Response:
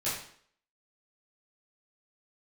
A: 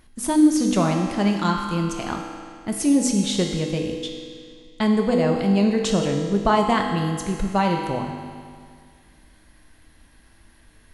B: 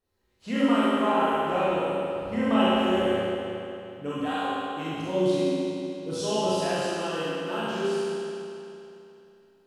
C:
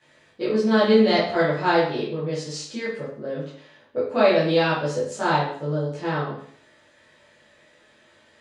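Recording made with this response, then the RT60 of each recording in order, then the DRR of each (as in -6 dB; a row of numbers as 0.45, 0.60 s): C; 2.1, 2.9, 0.55 s; 1.0, -11.0, -11.5 dB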